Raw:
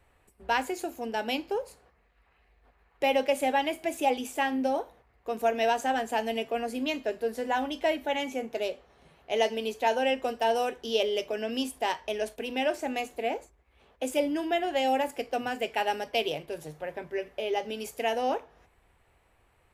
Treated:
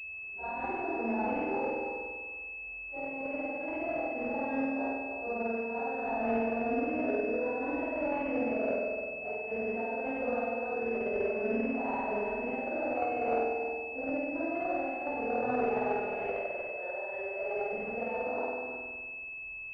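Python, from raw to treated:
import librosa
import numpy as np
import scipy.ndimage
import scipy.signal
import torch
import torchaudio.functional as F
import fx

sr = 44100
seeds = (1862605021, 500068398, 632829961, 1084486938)

y = fx.phase_scramble(x, sr, seeds[0], window_ms=200)
y = fx.highpass(y, sr, hz=490.0, slope=24, at=(16.04, 17.73))
y = fx.over_compress(y, sr, threshold_db=-31.0, ratio=-0.5)
y = fx.doubler(y, sr, ms=26.0, db=-12.5)
y = y + 10.0 ** (-8.5 / 20.0) * np.pad(y, (int(304 * sr / 1000.0), 0))[:len(y)]
y = fx.rev_spring(y, sr, rt60_s=1.5, pass_ms=(48,), chirp_ms=80, drr_db=-5.0)
y = fx.pwm(y, sr, carrier_hz=2600.0)
y = y * 10.0 ** (-7.0 / 20.0)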